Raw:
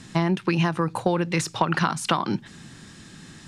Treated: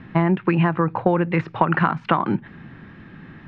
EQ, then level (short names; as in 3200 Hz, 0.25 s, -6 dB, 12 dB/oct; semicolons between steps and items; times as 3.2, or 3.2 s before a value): LPF 2300 Hz 24 dB/oct; +4.0 dB